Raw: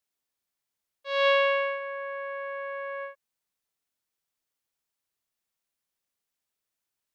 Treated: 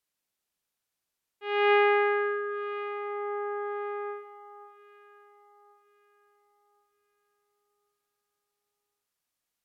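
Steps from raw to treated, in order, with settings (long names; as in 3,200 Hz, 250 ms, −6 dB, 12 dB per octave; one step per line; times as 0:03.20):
delay that swaps between a low-pass and a high-pass 398 ms, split 1,900 Hz, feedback 55%, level −11 dB
wrong playback speed 45 rpm record played at 33 rpm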